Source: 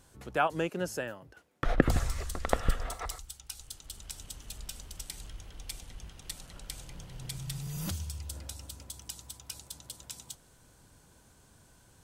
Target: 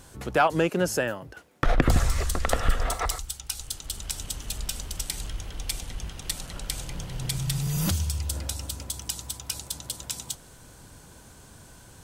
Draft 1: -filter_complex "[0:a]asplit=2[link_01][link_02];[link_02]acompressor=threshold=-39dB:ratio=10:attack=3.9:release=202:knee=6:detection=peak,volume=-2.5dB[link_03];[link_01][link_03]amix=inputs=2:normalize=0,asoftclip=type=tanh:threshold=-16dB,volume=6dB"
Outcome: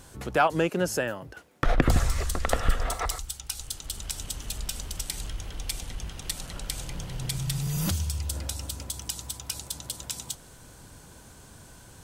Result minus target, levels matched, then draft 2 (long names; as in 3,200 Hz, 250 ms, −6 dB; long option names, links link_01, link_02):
downward compressor: peak gain reduction +8.5 dB
-filter_complex "[0:a]asplit=2[link_01][link_02];[link_02]acompressor=threshold=-29.5dB:ratio=10:attack=3.9:release=202:knee=6:detection=peak,volume=-2.5dB[link_03];[link_01][link_03]amix=inputs=2:normalize=0,asoftclip=type=tanh:threshold=-16dB,volume=6dB"